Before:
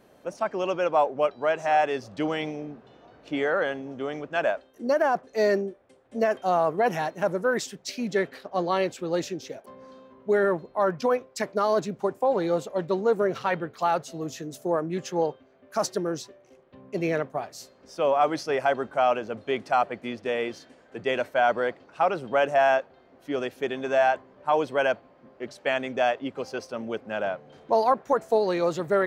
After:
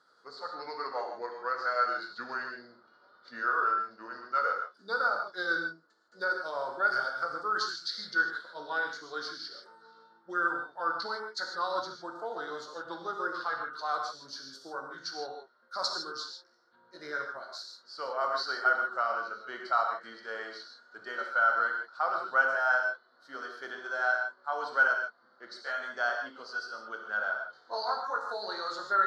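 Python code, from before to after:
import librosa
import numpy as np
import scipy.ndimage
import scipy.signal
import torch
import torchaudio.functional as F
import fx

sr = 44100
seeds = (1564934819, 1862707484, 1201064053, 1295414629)

y = fx.pitch_glide(x, sr, semitones=-4.0, runs='ending unshifted')
y = fx.double_bandpass(y, sr, hz=2500.0, octaves=1.6)
y = fx.rev_gated(y, sr, seeds[0], gate_ms=180, shape='flat', drr_db=2.0)
y = y * 10.0 ** (7.5 / 20.0)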